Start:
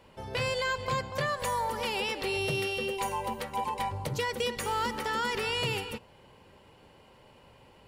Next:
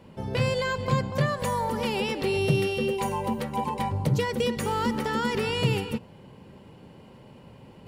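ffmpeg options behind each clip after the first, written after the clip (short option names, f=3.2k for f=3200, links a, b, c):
-af "equalizer=f=180:t=o:w=2.2:g=14,areverse,acompressor=mode=upward:threshold=-45dB:ratio=2.5,areverse"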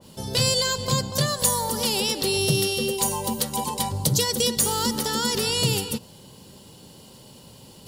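-af "aexciter=amount=7.2:drive=7.2:freq=3.4k,adynamicequalizer=threshold=0.02:dfrequency=2100:dqfactor=0.7:tfrequency=2100:tqfactor=0.7:attack=5:release=100:ratio=0.375:range=2:mode=cutabove:tftype=highshelf"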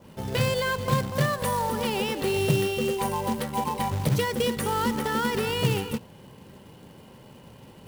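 -af "highshelf=f=3.2k:t=q:w=1.5:g=-14,bandreject=f=7k:w=7,acrusher=bits=3:mode=log:mix=0:aa=0.000001"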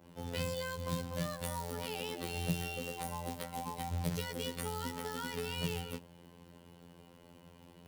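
-filter_complex "[0:a]afftfilt=real='hypot(re,im)*cos(PI*b)':imag='0':win_size=2048:overlap=0.75,acrossover=split=290|3000[a][b][c];[b]acompressor=threshold=-34dB:ratio=5[d];[a][d][c]amix=inputs=3:normalize=0,volume=-5.5dB"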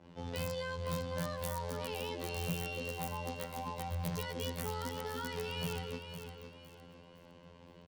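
-filter_complex "[0:a]acrossover=split=6600[a][b];[a]asoftclip=type=tanh:threshold=-31.5dB[c];[b]acrusher=bits=4:mix=0:aa=0.000001[d];[c][d]amix=inputs=2:normalize=0,aecho=1:1:509|1018|1527|2036:0.376|0.124|0.0409|0.0135,volume=1dB"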